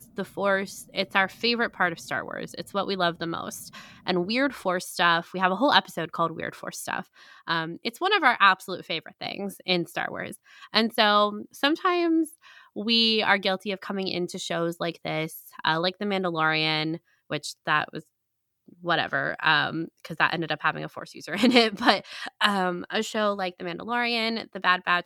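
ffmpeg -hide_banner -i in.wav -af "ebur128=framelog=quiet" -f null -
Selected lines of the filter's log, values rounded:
Integrated loudness:
  I:         -25.3 LUFS
  Threshold: -35.7 LUFS
Loudness range:
  LRA:         3.4 LU
  Threshold: -45.6 LUFS
  LRA low:   -27.4 LUFS
  LRA high:  -24.1 LUFS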